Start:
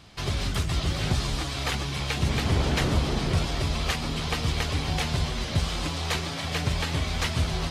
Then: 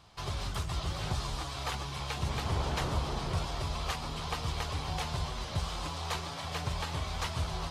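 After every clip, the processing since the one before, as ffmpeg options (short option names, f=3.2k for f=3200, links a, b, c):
-af "equalizer=f=250:t=o:w=1:g=-6,equalizer=f=1k:t=o:w=1:g=7,equalizer=f=2k:t=o:w=1:g=-4,volume=-7.5dB"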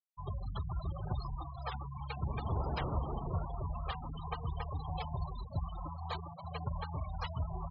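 -af "afftfilt=real='re*gte(hypot(re,im),0.0316)':imag='im*gte(hypot(re,im),0.0316)':win_size=1024:overlap=0.75,volume=-2.5dB"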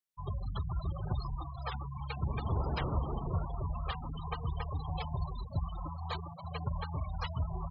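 -af "equalizer=f=740:t=o:w=0.77:g=-3.5,volume=2.5dB"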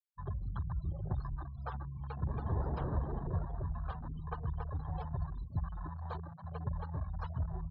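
-af "afwtdn=0.01,adynamicequalizer=threshold=0.00158:dfrequency=1300:dqfactor=1.2:tfrequency=1300:tqfactor=1.2:attack=5:release=100:ratio=0.375:range=2:mode=cutabove:tftype=bell,volume=-1.5dB"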